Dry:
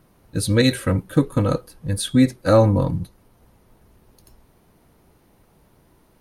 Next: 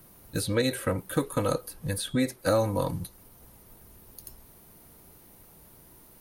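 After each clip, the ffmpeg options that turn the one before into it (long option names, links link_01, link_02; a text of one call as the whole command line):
ffmpeg -i in.wav -filter_complex "[0:a]aemphasis=mode=production:type=50fm,acrossover=split=410|1100|3500[link_01][link_02][link_03][link_04];[link_01]acompressor=threshold=-31dB:ratio=4[link_05];[link_02]acompressor=threshold=-25dB:ratio=4[link_06];[link_03]acompressor=threshold=-37dB:ratio=4[link_07];[link_04]acompressor=threshold=-39dB:ratio=4[link_08];[link_05][link_06][link_07][link_08]amix=inputs=4:normalize=0" out.wav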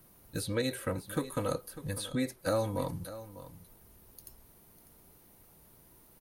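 ffmpeg -i in.wav -af "aecho=1:1:598:0.188,volume=-6dB" out.wav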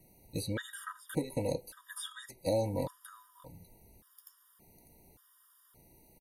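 ffmpeg -i in.wav -af "aresample=32000,aresample=44100,afftfilt=real='re*gt(sin(2*PI*0.87*pts/sr)*(1-2*mod(floor(b*sr/1024/950),2)),0)':imag='im*gt(sin(2*PI*0.87*pts/sr)*(1-2*mod(floor(b*sr/1024/950),2)),0)':win_size=1024:overlap=0.75" out.wav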